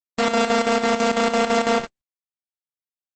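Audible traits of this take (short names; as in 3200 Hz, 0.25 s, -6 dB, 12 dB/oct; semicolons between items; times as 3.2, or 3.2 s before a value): a buzz of ramps at a fixed pitch in blocks of 64 samples; chopped level 6 Hz, depth 60%, duty 70%; a quantiser's noise floor 12-bit, dither none; Opus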